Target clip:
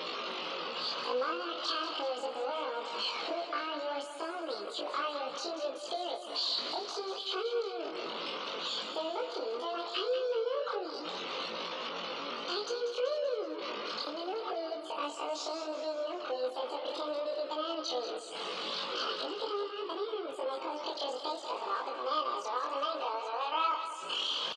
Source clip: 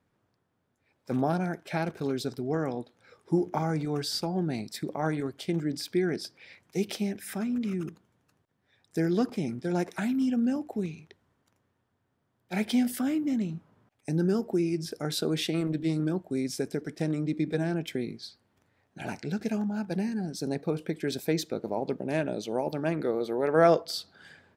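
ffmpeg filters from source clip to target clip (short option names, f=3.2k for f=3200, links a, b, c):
-filter_complex "[0:a]aeval=exprs='val(0)+0.5*0.0316*sgn(val(0))':c=same,afftfilt=real='re*gte(hypot(re,im),0.0126)':imag='im*gte(hypot(re,im),0.0126)':win_size=1024:overlap=0.75,acompressor=threshold=-35dB:ratio=3,asetrate=85689,aresample=44100,atempo=0.514651,flanger=delay=18:depth=6.6:speed=0.69,highpass=430,equalizer=f=510:t=q:w=4:g=5,equalizer=f=750:t=q:w=4:g=-4,equalizer=f=1.2k:t=q:w=4:g=8,equalizer=f=1.8k:t=q:w=4:g=-9,equalizer=f=3k:t=q:w=4:g=7,equalizer=f=4.3k:t=q:w=4:g=9,lowpass=f=5.6k:w=0.5412,lowpass=f=5.6k:w=1.3066,asplit=2[a][b];[b]aecho=0:1:190|380|570|760|950|1140:0.316|0.177|0.0992|0.0555|0.0311|0.0174[c];[a][c]amix=inputs=2:normalize=0,volume=2dB"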